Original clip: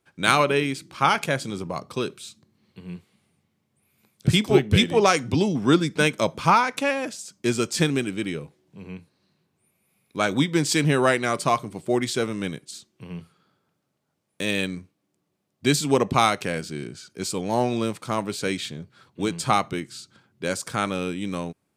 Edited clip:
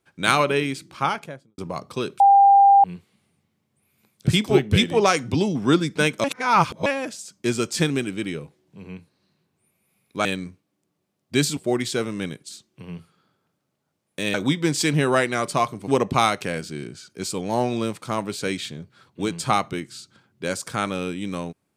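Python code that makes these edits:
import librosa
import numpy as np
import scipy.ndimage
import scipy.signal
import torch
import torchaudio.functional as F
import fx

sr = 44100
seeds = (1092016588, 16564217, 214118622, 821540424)

y = fx.studio_fade_out(x, sr, start_s=0.83, length_s=0.75)
y = fx.edit(y, sr, fx.bleep(start_s=2.2, length_s=0.64, hz=796.0, db=-9.5),
    fx.reverse_span(start_s=6.24, length_s=0.62),
    fx.swap(start_s=10.25, length_s=1.54, other_s=14.56, other_length_s=1.32), tone=tone)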